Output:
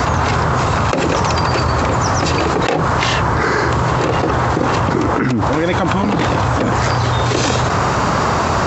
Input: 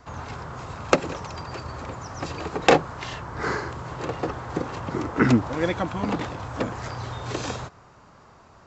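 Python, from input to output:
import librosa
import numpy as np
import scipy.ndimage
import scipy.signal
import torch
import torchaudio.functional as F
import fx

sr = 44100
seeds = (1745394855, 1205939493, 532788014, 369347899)

y = scipy.signal.sosfilt(scipy.signal.butter(2, 52.0, 'highpass', fs=sr, output='sos'), x)
y = fx.env_flatten(y, sr, amount_pct=100)
y = F.gain(torch.from_numpy(y), -3.5).numpy()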